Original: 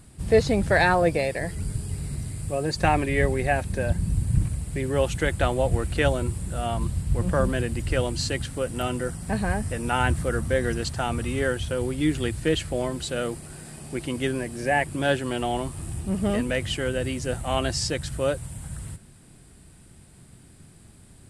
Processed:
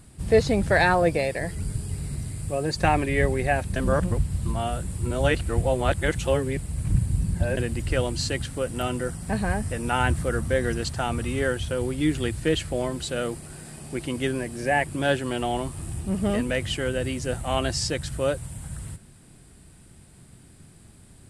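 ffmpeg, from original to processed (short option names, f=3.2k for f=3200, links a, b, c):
-filter_complex "[0:a]asplit=3[a][b][c];[a]atrim=end=3.762[d];[b]atrim=start=3.758:end=7.572,asetpts=PTS-STARTPTS,areverse[e];[c]atrim=start=7.568[f];[d][e]acrossfade=d=0.004:c1=hsin:c2=hsin[g];[g][f]acrossfade=d=0.004:c1=hsin:c2=hsin"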